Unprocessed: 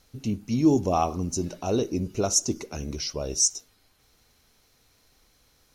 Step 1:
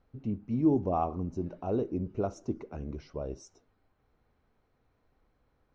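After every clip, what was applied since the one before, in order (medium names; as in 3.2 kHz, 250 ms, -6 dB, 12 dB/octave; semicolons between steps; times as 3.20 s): low-pass 1.3 kHz 12 dB/octave; trim -5 dB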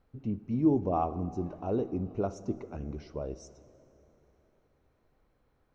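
plate-style reverb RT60 3.9 s, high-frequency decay 0.7×, DRR 15.5 dB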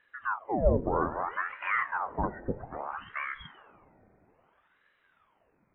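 knee-point frequency compression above 1.1 kHz 4:1; ring modulator with a swept carrier 930 Hz, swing 85%, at 0.61 Hz; trim +3.5 dB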